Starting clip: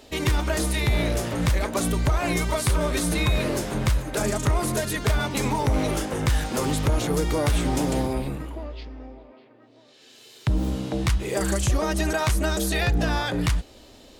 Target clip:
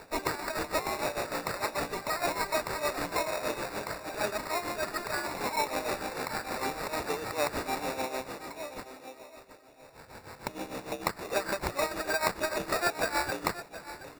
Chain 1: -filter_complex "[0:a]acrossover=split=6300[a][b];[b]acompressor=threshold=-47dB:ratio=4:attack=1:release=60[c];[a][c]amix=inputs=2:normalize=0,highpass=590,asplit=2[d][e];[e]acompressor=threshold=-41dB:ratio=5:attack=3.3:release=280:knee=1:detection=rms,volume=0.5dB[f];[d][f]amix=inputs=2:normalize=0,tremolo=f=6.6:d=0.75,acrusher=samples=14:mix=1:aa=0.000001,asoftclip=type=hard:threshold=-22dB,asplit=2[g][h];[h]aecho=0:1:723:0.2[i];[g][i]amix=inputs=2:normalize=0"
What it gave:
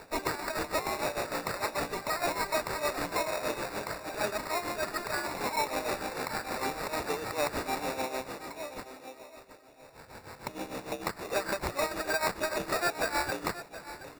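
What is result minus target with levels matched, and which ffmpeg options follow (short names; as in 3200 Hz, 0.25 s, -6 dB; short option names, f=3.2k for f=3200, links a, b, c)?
hard clip: distortion +13 dB
-filter_complex "[0:a]acrossover=split=6300[a][b];[b]acompressor=threshold=-47dB:ratio=4:attack=1:release=60[c];[a][c]amix=inputs=2:normalize=0,highpass=590,asplit=2[d][e];[e]acompressor=threshold=-41dB:ratio=5:attack=3.3:release=280:knee=1:detection=rms,volume=0.5dB[f];[d][f]amix=inputs=2:normalize=0,tremolo=f=6.6:d=0.75,acrusher=samples=14:mix=1:aa=0.000001,asoftclip=type=hard:threshold=-15.5dB,asplit=2[g][h];[h]aecho=0:1:723:0.2[i];[g][i]amix=inputs=2:normalize=0"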